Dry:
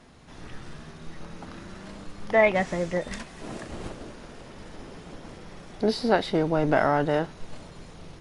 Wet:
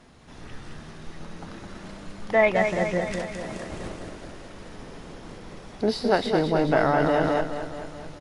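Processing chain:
on a send: repeating echo 212 ms, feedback 59%, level −6 dB
0:07.00–0:07.41: on the sum: envelope flattener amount 70%

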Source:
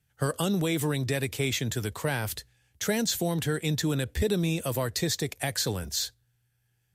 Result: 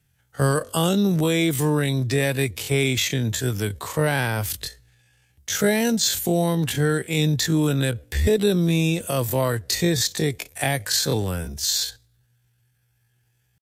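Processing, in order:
tempo change 0.51×
harmonic generator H 4 −37 dB, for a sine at −13.5 dBFS
level +6.5 dB

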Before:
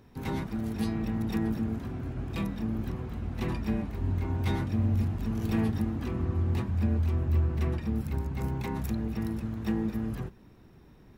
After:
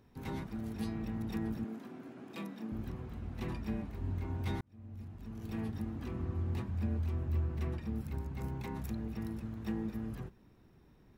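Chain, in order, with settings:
0:01.64–0:02.72: high-pass filter 200 Hz 24 dB per octave
0:04.61–0:06.11: fade in
level −7.5 dB

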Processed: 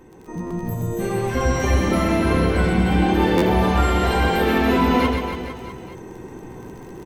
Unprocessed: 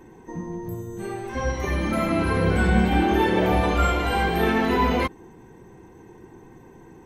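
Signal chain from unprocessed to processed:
automatic gain control gain up to 8 dB
surface crackle 17 per second −34 dBFS
downward compressor 2.5 to 1, threshold −19 dBFS, peak gain reduction 7 dB
parametric band 1,300 Hz −2.5 dB 1.3 octaves
double-tracking delay 16 ms −14 dB
reverse bouncing-ball delay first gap 130 ms, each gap 1.15×, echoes 5
pitch-shifted copies added +5 semitones −12 dB
buffer that repeats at 0:00.46/0:03.37, samples 512, times 3

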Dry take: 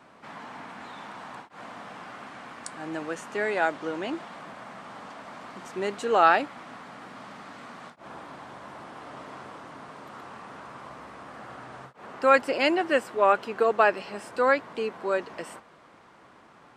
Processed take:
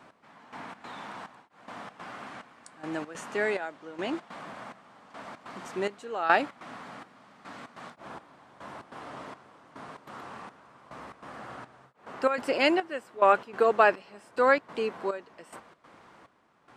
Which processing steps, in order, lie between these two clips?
gate pattern "x....xx.xxx" 143 BPM −12 dB

